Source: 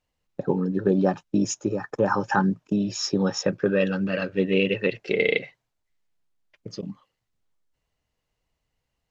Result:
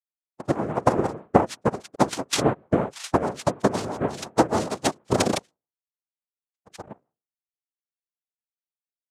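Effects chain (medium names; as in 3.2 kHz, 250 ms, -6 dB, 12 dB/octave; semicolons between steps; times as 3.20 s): expander on every frequency bin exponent 2; Chebyshev band-stop 370–1500 Hz, order 2; peaking EQ 420 Hz +12.5 dB 2.5 oct; hum notches 60/120/180/240 Hz; comb 4.3 ms, depth 74%; compression 2.5:1, threshold -18 dBFS, peak gain reduction 6.5 dB; transient shaper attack +8 dB, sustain +2 dB; noise-vocoded speech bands 2; rotary cabinet horn 6.3 Hz; trim -3.5 dB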